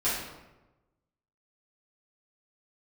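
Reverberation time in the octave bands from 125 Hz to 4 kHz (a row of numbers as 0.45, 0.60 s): 1.3, 1.1, 1.1, 1.0, 0.85, 0.65 s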